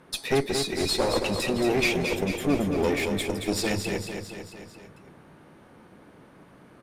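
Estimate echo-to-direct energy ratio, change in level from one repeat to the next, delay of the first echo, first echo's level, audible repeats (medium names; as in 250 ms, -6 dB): -4.5 dB, -4.5 dB, 224 ms, -6.5 dB, 5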